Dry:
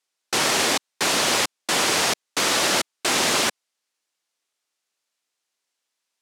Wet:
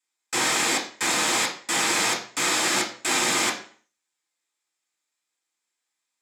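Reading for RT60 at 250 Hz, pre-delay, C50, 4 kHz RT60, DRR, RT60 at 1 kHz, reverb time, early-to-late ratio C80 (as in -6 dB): 0.45 s, 3 ms, 9.5 dB, 0.40 s, -4.5 dB, 0.45 s, 0.45 s, 13.5 dB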